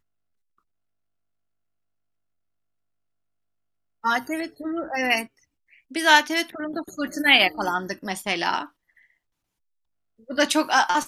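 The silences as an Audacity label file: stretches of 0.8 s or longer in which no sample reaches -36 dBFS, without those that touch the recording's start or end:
8.660000	10.290000	silence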